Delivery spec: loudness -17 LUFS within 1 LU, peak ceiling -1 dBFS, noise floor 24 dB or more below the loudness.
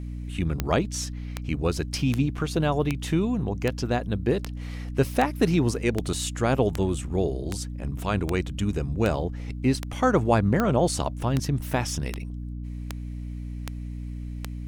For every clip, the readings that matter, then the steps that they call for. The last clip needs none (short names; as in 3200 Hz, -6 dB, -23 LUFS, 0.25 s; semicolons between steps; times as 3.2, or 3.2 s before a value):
clicks 19; hum 60 Hz; harmonics up to 300 Hz; hum level -31 dBFS; loudness -27.0 LUFS; peak -7.5 dBFS; loudness target -17.0 LUFS
-> de-click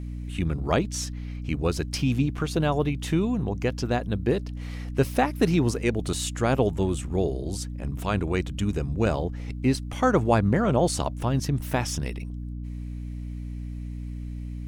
clicks 0; hum 60 Hz; harmonics up to 300 Hz; hum level -31 dBFS
-> notches 60/120/180/240/300 Hz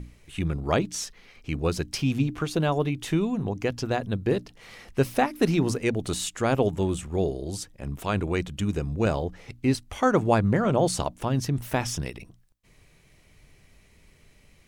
hum none; loudness -27.0 LUFS; peak -8.5 dBFS; loudness target -17.0 LUFS
-> gain +10 dB; limiter -1 dBFS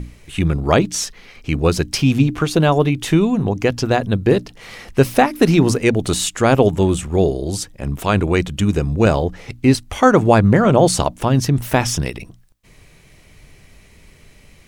loudness -17.0 LUFS; peak -1.0 dBFS; noise floor -48 dBFS